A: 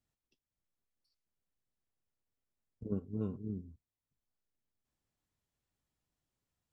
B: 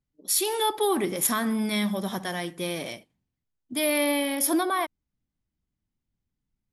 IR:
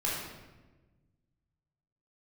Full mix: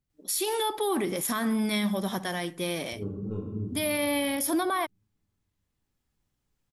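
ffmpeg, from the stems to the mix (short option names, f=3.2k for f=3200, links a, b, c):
-filter_complex "[0:a]bandreject=f=650:w=13,adelay=100,volume=1.5dB,asplit=2[a][b];[b]volume=-6.5dB[c];[1:a]volume=0dB,asplit=2[d][e];[e]apad=whole_len=300782[f];[a][f]sidechaincompress=threshold=-39dB:ratio=8:attack=16:release=1080[g];[2:a]atrim=start_sample=2205[h];[c][h]afir=irnorm=-1:irlink=0[i];[g][d][i]amix=inputs=3:normalize=0,alimiter=limit=-19.5dB:level=0:latency=1:release=36"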